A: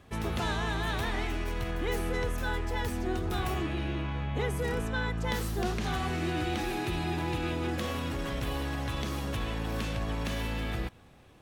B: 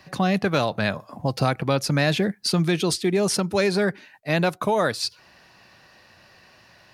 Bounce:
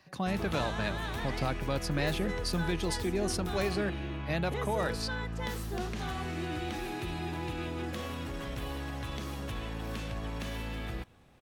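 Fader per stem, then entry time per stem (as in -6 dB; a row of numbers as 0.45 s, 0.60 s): -4.5 dB, -11.0 dB; 0.15 s, 0.00 s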